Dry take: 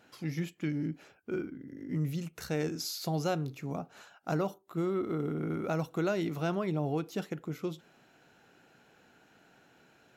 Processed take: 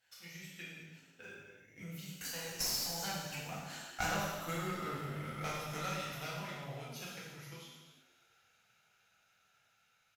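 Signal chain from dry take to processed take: Doppler pass-by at 4.41 s, 25 m/s, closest 19 m; amplifier tone stack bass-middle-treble 10-0-10; band-stop 1.1 kHz, Q 6.7; one-sided clip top -55 dBFS; on a send: frequency-shifting echo 244 ms, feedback 34%, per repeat +99 Hz, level -14.5 dB; on the sum: transient shaper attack +8 dB, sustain -1 dB; gated-style reverb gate 410 ms falling, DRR -7 dB; trim +5.5 dB

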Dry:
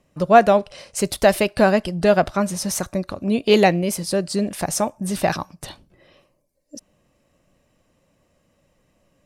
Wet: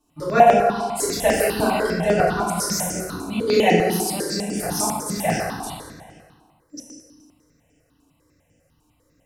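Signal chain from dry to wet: treble shelf 4.6 kHz +6.5 dB; FDN reverb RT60 1.8 s, low-frequency decay 1×, high-frequency decay 0.65×, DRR -9.5 dB; stepped phaser 10 Hz 540–4000 Hz; trim -7.5 dB

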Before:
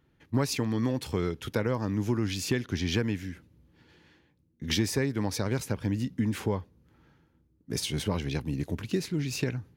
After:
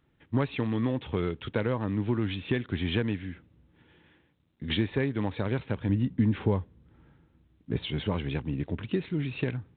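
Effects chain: 5.89–7.83 s: tilt EQ -1.5 dB/octave; G.726 32 kbps 8 kHz

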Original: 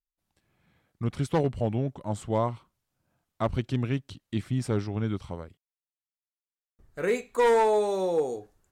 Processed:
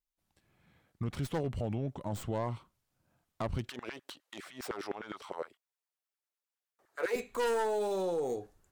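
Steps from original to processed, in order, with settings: tracing distortion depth 0.17 ms; peak limiter -26.5 dBFS, peak gain reduction 10.5 dB; 3.69–7.16 s: LFO high-pass saw down 9.8 Hz 360–1700 Hz

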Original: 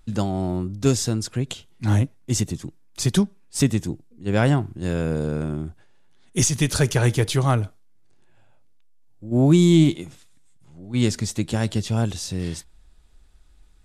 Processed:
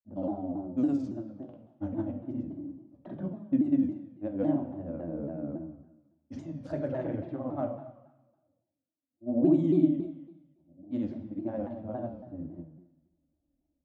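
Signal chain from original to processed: two resonant band-passes 420 Hz, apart 0.97 oct; level-controlled noise filter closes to 460 Hz, open at -24.5 dBFS; granulator, pitch spread up and down by 0 st; on a send at -3 dB: reverberation RT60 1.0 s, pre-delay 3 ms; on the sum: vibrato with a chosen wave saw down 3.6 Hz, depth 160 cents; trim -1.5 dB

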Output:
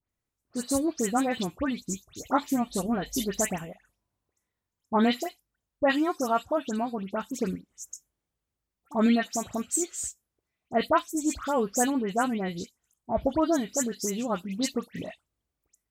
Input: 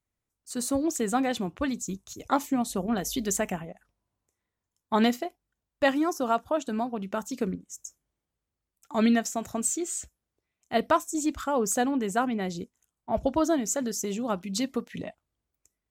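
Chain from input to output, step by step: phase dispersion highs, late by 96 ms, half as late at 2.6 kHz

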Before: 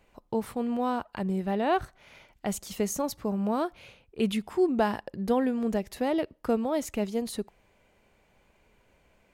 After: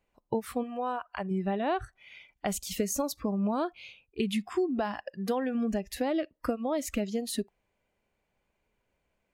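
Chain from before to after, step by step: 5.03–5.55 s: bass shelf 260 Hz -9.5 dB; compression 16:1, threshold -29 dBFS, peak gain reduction 11 dB; 0.63–1.31 s: graphic EQ 125/250/4000 Hz -11/-5/-5 dB; spectral noise reduction 18 dB; trim +4.5 dB

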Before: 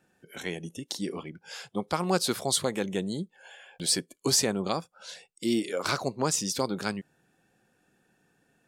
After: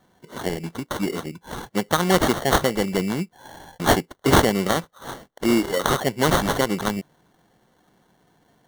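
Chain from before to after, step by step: treble shelf 6.9 kHz +4.5 dB; sample-rate reducer 2.5 kHz, jitter 0%; trim +7.5 dB

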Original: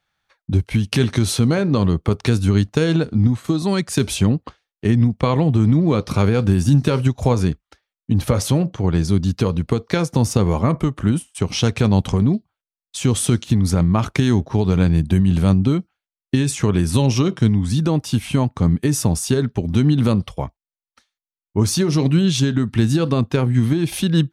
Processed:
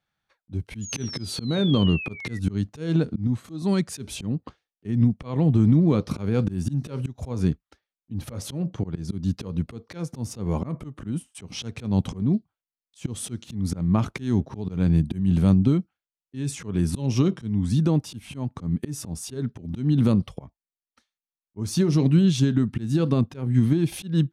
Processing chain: painted sound fall, 0.81–2.39 s, 1.9–7 kHz -25 dBFS; slow attack 213 ms; peaking EQ 200 Hz +7 dB 2.4 oct; trim -8.5 dB

